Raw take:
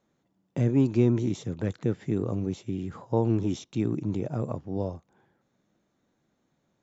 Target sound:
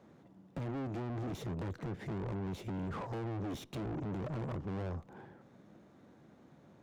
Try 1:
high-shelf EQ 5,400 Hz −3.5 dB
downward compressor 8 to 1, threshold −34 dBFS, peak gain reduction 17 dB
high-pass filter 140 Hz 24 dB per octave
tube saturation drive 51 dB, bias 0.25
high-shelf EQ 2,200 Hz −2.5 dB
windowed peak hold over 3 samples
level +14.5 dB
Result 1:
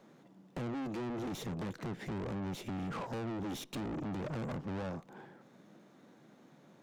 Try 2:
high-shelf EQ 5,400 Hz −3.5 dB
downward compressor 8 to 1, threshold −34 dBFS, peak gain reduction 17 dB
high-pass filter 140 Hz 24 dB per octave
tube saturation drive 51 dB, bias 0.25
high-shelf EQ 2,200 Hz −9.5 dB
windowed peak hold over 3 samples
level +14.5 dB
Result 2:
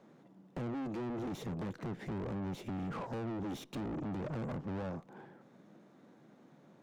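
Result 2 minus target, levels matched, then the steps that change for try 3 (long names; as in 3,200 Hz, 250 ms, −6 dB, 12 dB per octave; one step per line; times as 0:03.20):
125 Hz band −2.5 dB
change: high-pass filter 60 Hz 24 dB per octave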